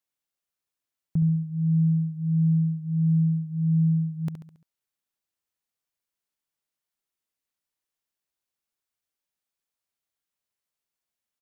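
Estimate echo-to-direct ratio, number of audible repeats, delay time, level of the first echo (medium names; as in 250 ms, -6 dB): -8.5 dB, 5, 69 ms, -9.5 dB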